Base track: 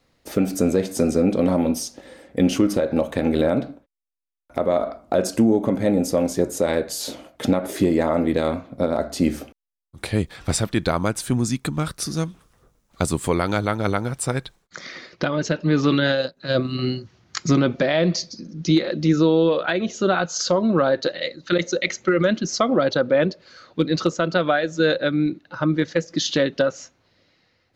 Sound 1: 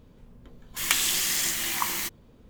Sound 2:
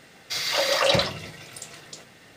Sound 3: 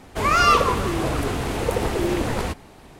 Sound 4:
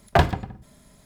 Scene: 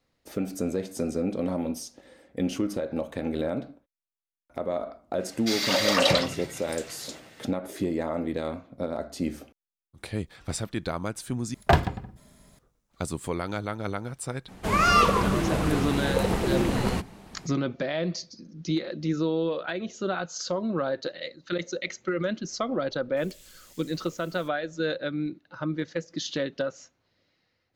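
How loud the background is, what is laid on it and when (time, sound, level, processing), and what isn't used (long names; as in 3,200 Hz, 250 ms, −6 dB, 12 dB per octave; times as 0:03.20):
base track −9.5 dB
0:05.16: mix in 2 −1 dB, fades 0.10 s
0:11.54: overwrite with 4 −2 dB
0:14.48: mix in 3 −3.5 dB + parametric band 190 Hz +12 dB 0.31 octaves
0:22.40: mix in 1 −7 dB + guitar amp tone stack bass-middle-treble 10-0-1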